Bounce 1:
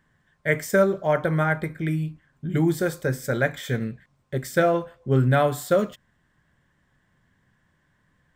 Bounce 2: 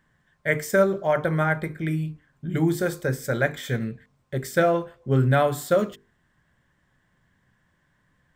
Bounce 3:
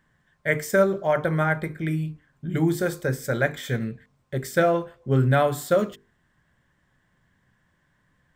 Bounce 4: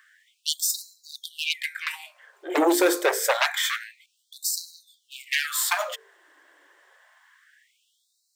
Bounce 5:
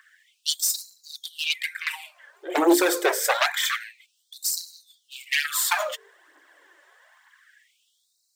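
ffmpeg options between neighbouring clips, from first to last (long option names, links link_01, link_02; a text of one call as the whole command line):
ffmpeg -i in.wav -af "bandreject=frequency=50:width_type=h:width=6,bandreject=frequency=100:width_type=h:width=6,bandreject=frequency=150:width_type=h:width=6,bandreject=frequency=200:width_type=h:width=6,bandreject=frequency=250:width_type=h:width=6,bandreject=frequency=300:width_type=h:width=6,bandreject=frequency=350:width_type=h:width=6,bandreject=frequency=400:width_type=h:width=6,bandreject=frequency=450:width_type=h:width=6" out.wav
ffmpeg -i in.wav -af anull out.wav
ffmpeg -i in.wav -filter_complex "[0:a]acrossover=split=170|3000[link_01][link_02][link_03];[link_02]acompressor=threshold=-22dB:ratio=10[link_04];[link_01][link_04][link_03]amix=inputs=3:normalize=0,aeval=exprs='0.266*sin(PI/2*3.55*val(0)/0.266)':channel_layout=same,afftfilt=real='re*gte(b*sr/1024,280*pow(3900/280,0.5+0.5*sin(2*PI*0.27*pts/sr)))':imag='im*gte(b*sr/1024,280*pow(3900/280,0.5+0.5*sin(2*PI*0.27*pts/sr)))':win_size=1024:overlap=0.75,volume=-2.5dB" out.wav
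ffmpeg -i in.wav -af "aphaser=in_gain=1:out_gain=1:delay=3.6:decay=0.49:speed=1.1:type=triangular" out.wav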